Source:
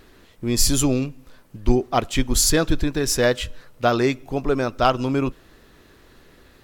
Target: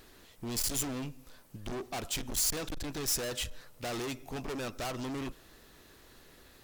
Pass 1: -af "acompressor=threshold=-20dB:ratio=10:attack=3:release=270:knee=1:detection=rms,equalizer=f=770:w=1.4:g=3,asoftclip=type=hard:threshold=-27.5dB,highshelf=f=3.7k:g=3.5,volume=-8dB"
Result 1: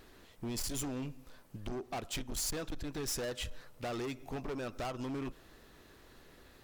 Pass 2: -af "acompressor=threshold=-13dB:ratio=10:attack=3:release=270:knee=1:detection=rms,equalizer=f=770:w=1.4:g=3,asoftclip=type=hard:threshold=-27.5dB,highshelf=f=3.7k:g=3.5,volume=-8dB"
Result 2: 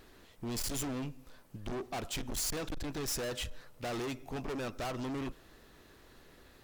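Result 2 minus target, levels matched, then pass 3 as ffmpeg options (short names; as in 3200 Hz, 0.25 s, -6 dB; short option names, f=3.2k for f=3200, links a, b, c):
8000 Hz band -2.5 dB
-af "acompressor=threshold=-13dB:ratio=10:attack=3:release=270:knee=1:detection=rms,equalizer=f=770:w=1.4:g=3,asoftclip=type=hard:threshold=-27.5dB,highshelf=f=3.7k:g=10.5,volume=-8dB"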